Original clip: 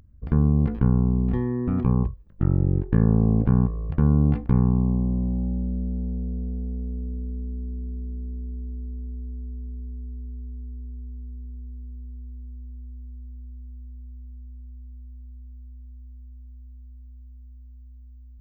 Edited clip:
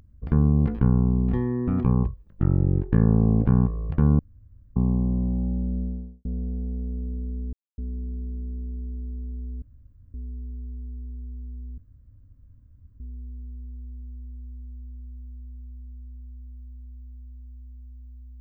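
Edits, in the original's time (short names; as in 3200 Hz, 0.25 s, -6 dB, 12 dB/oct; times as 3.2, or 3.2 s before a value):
4.19–4.76 room tone
5.75–6.25 studio fade out
7.53 insert silence 0.25 s
9.37–9.89 room tone
11.53 insert room tone 1.22 s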